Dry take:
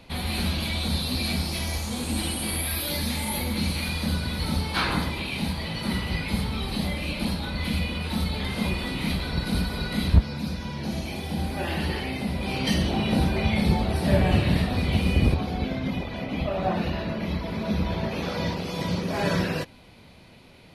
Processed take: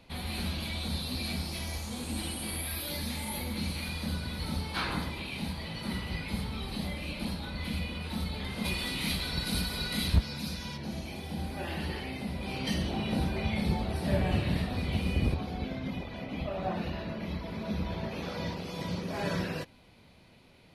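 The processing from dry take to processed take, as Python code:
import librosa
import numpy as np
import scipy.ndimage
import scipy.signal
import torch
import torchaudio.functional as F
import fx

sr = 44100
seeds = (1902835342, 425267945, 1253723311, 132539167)

y = fx.high_shelf(x, sr, hz=2400.0, db=11.5, at=(8.64, 10.76), fade=0.02)
y = y * librosa.db_to_amplitude(-7.5)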